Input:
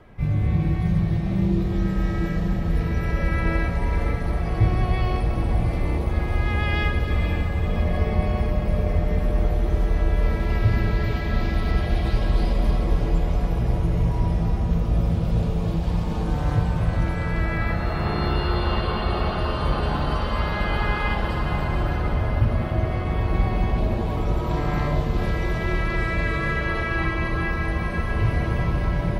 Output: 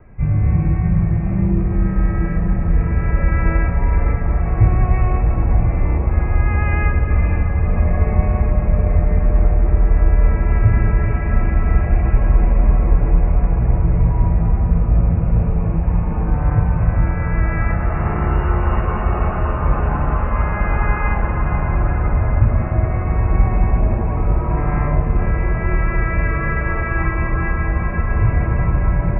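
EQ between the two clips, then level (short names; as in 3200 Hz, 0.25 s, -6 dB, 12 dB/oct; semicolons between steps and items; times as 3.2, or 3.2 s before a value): steep low-pass 2600 Hz 96 dB/oct; low shelf 160 Hz +9.5 dB; dynamic EQ 1100 Hz, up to +5 dB, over -42 dBFS, Q 0.76; -1.0 dB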